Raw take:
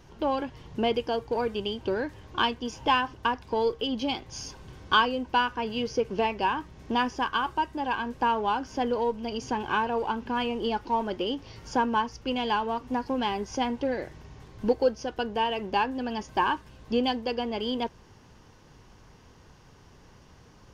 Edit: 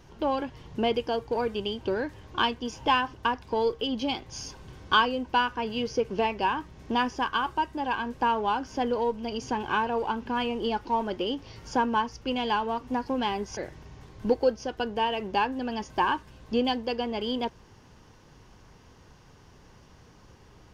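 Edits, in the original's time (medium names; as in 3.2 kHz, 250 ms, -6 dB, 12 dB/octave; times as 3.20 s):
13.57–13.96 s: delete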